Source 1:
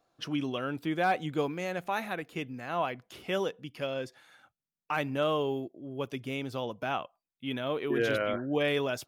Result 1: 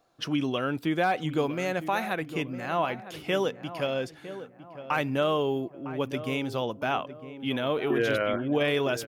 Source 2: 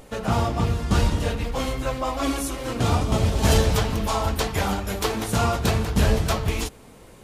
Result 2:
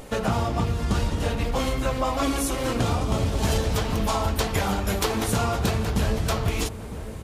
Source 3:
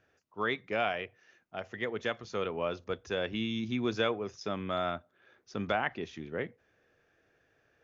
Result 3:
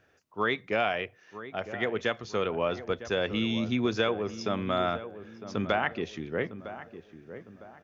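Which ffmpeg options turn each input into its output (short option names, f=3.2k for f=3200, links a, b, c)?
-filter_complex "[0:a]acompressor=threshold=-26dB:ratio=5,asplit=2[a][b];[b]adelay=956,lowpass=f=1.3k:p=1,volume=-12dB,asplit=2[c][d];[d]adelay=956,lowpass=f=1.3k:p=1,volume=0.42,asplit=2[e][f];[f]adelay=956,lowpass=f=1.3k:p=1,volume=0.42,asplit=2[g][h];[h]adelay=956,lowpass=f=1.3k:p=1,volume=0.42[i];[a][c][e][g][i]amix=inputs=5:normalize=0,volume=5dB"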